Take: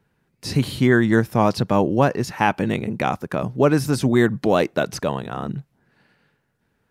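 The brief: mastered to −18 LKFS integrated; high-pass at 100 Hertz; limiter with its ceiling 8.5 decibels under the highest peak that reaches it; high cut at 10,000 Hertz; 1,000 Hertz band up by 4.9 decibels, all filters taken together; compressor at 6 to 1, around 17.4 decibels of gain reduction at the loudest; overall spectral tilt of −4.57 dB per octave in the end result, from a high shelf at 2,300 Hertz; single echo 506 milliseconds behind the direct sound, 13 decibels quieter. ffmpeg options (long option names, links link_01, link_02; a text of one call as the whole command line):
ffmpeg -i in.wav -af "highpass=100,lowpass=10000,equalizer=frequency=1000:width_type=o:gain=5,highshelf=frequency=2300:gain=7.5,acompressor=threshold=-29dB:ratio=6,alimiter=limit=-20.5dB:level=0:latency=1,aecho=1:1:506:0.224,volume=16dB" out.wav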